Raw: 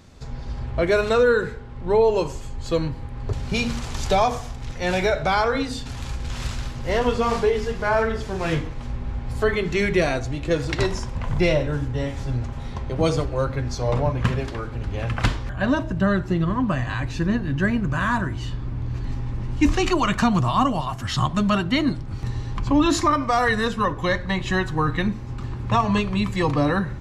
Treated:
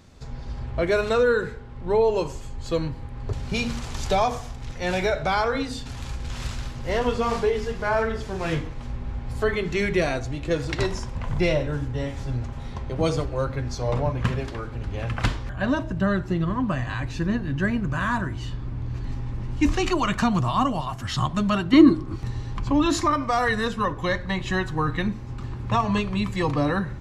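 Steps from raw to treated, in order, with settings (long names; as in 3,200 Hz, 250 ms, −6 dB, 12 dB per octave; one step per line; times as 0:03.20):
0:21.73–0:22.16: hollow resonant body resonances 330/1,100 Hz, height 17 dB
level −2.5 dB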